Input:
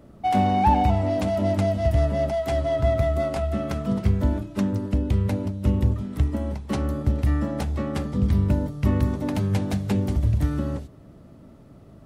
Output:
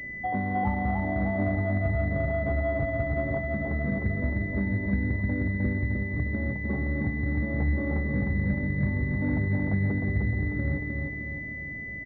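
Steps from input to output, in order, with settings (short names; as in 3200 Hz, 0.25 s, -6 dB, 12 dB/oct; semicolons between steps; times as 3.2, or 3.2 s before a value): tilt shelf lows +4 dB, about 740 Hz; compressor, threshold -23 dBFS, peak gain reduction 12 dB; feedback echo 0.307 s, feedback 51%, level -3.5 dB; pulse-width modulation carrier 2000 Hz; gain -2.5 dB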